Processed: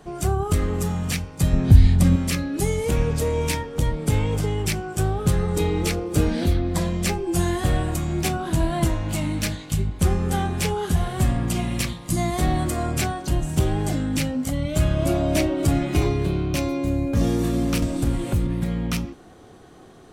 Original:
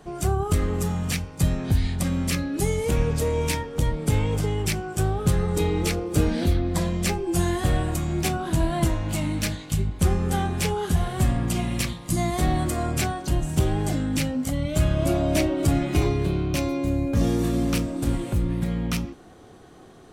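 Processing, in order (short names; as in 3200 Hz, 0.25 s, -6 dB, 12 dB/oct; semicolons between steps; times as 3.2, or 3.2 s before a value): 1.53–2.16 low shelf 270 Hz +10.5 dB; 17.82–18.47 three-band squash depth 100%; gain +1 dB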